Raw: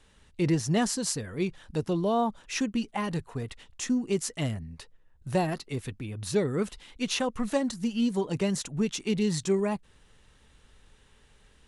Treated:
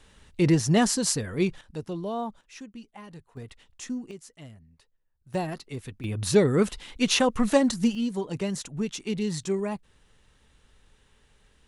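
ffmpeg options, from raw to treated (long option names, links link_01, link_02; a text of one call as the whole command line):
ffmpeg -i in.wav -af "asetnsamples=nb_out_samples=441:pad=0,asendcmd='1.61 volume volume -5.5dB;2.41 volume volume -14dB;3.37 volume volume -6dB;4.11 volume volume -15.5dB;5.34 volume volume -3dB;6.04 volume volume 6.5dB;7.95 volume volume -2dB',volume=4.5dB" out.wav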